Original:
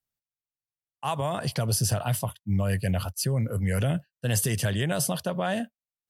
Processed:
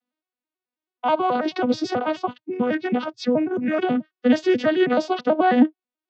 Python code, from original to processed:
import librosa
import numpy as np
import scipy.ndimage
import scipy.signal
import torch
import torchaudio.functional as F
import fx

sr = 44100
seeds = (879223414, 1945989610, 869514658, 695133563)

y = fx.vocoder_arp(x, sr, chord='major triad', root=59, every_ms=108)
y = scipy.signal.sosfilt(scipy.signal.butter(4, 4500.0, 'lowpass', fs=sr, output='sos'), y)
y = y * 10.0 ** (7.5 / 20.0)